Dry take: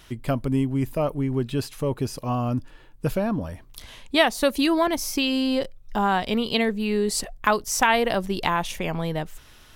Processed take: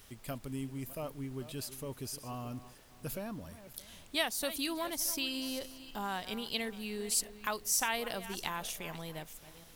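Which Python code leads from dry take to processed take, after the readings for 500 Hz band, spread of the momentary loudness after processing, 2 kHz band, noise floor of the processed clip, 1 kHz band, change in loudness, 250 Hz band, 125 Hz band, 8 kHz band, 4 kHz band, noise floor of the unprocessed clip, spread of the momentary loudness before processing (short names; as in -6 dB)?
-16.5 dB, 14 LU, -12.5 dB, -56 dBFS, -15.5 dB, -12.0 dB, -16.5 dB, -16.5 dB, -3.5 dB, -9.0 dB, -50 dBFS, 9 LU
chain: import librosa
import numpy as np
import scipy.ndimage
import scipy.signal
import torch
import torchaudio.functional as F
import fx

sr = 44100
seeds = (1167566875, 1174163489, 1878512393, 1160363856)

y = fx.reverse_delay_fb(x, sr, ms=311, feedback_pct=40, wet_db=-14)
y = librosa.effects.preemphasis(y, coef=0.8, zi=[0.0])
y = fx.dmg_noise_colour(y, sr, seeds[0], colour='pink', level_db=-58.0)
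y = y * 10.0 ** (-3.0 / 20.0)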